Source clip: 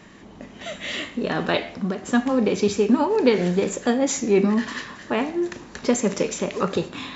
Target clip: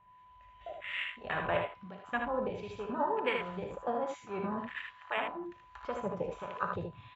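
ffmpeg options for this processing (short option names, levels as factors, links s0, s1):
-filter_complex "[0:a]aeval=exprs='val(0)+0.0141*sin(2*PI*1000*n/s)':c=same,firequalizer=gain_entry='entry(100,0);entry(240,-22);entry(650,-5);entry(2900,1);entry(5100,-16)':delay=0.05:min_phase=1,afwtdn=0.0282,acrossover=split=950[s0][s1];[s0]aeval=exprs='val(0)*(1-0.7/2+0.7/2*cos(2*PI*1.3*n/s))':c=same[s2];[s1]aeval=exprs='val(0)*(1-0.7/2-0.7/2*cos(2*PI*1.3*n/s))':c=same[s3];[s2][s3]amix=inputs=2:normalize=0,aecho=1:1:60|77:0.316|0.531"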